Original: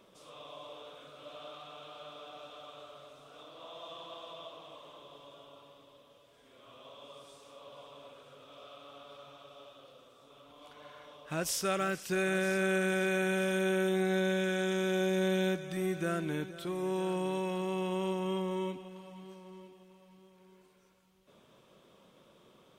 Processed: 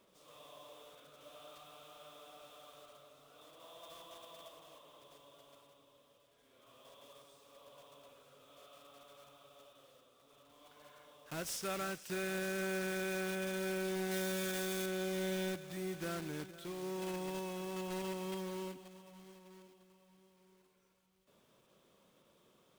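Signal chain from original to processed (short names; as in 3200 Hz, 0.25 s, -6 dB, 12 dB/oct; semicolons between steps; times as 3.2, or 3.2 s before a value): block floating point 3-bit; 14.11–14.86 high shelf 4600 Hz +8 dB; gain -8 dB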